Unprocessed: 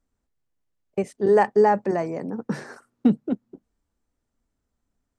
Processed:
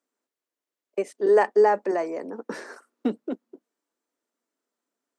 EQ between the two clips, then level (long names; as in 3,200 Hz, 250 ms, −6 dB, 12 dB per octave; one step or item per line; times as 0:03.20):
high-pass filter 300 Hz 24 dB per octave
notch filter 790 Hz, Q 12
0.0 dB